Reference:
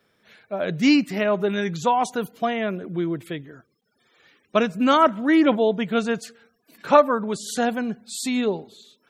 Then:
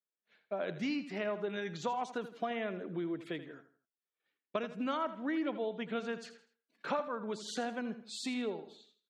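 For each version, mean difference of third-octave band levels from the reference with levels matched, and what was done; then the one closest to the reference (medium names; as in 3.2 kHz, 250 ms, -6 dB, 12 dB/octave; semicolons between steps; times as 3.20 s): 5.0 dB: expander -42 dBFS; compression 6:1, threshold -27 dBFS, peak gain reduction 17 dB; band-pass 220–4900 Hz; feedback delay 81 ms, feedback 35%, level -13 dB; trim -5.5 dB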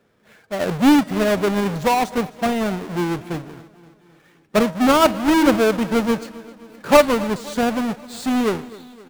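10.0 dB: square wave that keeps the level; treble shelf 2.9 kHz -8.5 dB; de-hum 318.4 Hz, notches 36; on a send: feedback delay 261 ms, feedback 57%, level -19.5 dB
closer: first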